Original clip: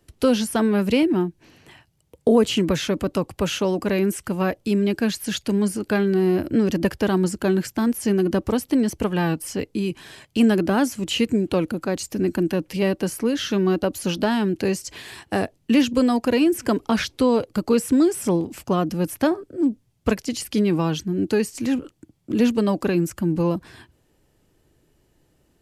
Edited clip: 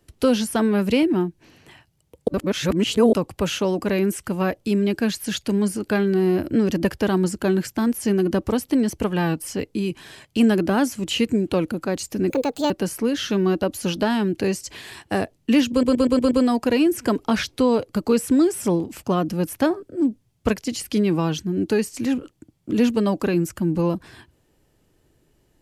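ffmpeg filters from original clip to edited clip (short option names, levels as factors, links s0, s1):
-filter_complex "[0:a]asplit=10[s0][s1][s2][s3][s4][s5][s6][s7][s8][s9];[s0]atrim=end=2.282[s10];[s1]atrim=start=2.278:end=3.132,asetpts=PTS-STARTPTS,areverse[s11];[s2]atrim=start=3.128:end=12.304[s12];[s3]atrim=start=12.3:end=12.91,asetpts=PTS-STARTPTS,asetrate=67032,aresample=44100,atrim=end_sample=17698,asetpts=PTS-STARTPTS[s13];[s4]atrim=start=12.906:end=16.042[s14];[s5]atrim=start=15.918:end=16.042[s15];[s6]atrim=start=15.918:end=16.042[s16];[s7]atrim=start=15.918:end=16.042[s17];[s8]atrim=start=15.918:end=16.042[s18];[s9]atrim=start=15.918[s19];[s10][s11]acrossfade=d=0.004:c1=hsin:c2=hsin[s20];[s20][s12]acrossfade=d=0.004:c1=hsin:c2=hsin[s21];[s21][s13]acrossfade=d=0.004:c1=hsin:c2=hsin[s22];[s22][s14]acrossfade=d=0.004:c1=hsin:c2=hsin[s23];[s23][s15]acrossfade=d=0.004:c1=hsin:c2=hsin[s24];[s24][s16]acrossfade=d=0.004:c1=hsin:c2=hsin[s25];[s25][s17]acrossfade=d=0.004:c1=hsin:c2=hsin[s26];[s26][s18]acrossfade=d=0.004:c1=hsin:c2=hsin[s27];[s27][s19]acrossfade=d=0.004:c1=hsin:c2=hsin"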